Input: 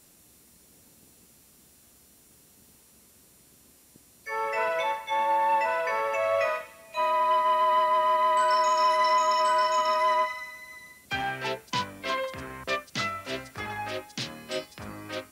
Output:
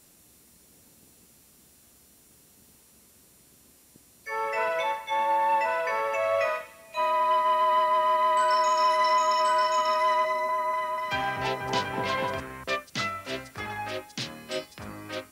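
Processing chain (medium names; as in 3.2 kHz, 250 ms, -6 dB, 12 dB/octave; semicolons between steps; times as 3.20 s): 10.00–12.40 s: delay with an opening low-pass 244 ms, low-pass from 750 Hz, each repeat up 1 oct, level 0 dB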